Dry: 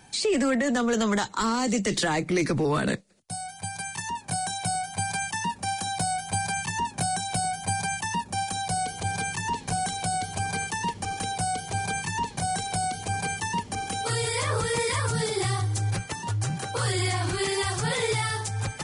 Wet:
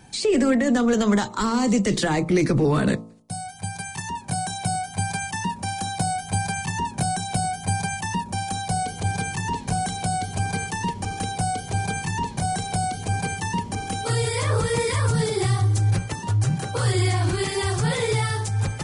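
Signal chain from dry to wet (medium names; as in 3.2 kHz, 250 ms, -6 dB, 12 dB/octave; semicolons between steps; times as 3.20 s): bass shelf 490 Hz +8 dB; de-hum 55.88 Hz, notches 23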